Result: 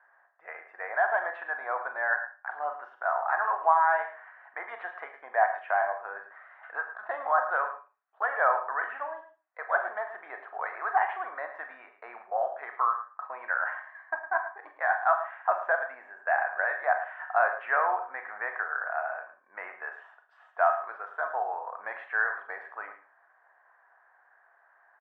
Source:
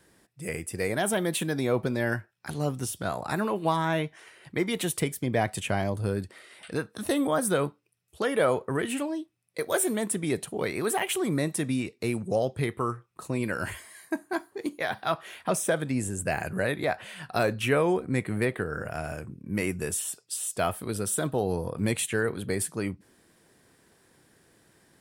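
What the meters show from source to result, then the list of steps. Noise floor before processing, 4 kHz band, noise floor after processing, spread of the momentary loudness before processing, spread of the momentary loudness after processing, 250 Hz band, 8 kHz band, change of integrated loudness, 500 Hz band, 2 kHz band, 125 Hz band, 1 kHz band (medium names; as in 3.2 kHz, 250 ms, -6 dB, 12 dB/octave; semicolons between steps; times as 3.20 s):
-65 dBFS, under -25 dB, -64 dBFS, 9 LU, 17 LU, under -30 dB, under -40 dB, -0.5 dB, -4.5 dB, +4.5 dB, under -40 dB, +6.5 dB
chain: elliptic band-pass 700–1700 Hz, stop band 80 dB; delay 109 ms -12.5 dB; Schroeder reverb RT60 0.31 s, combs from 30 ms, DRR 7 dB; trim +6 dB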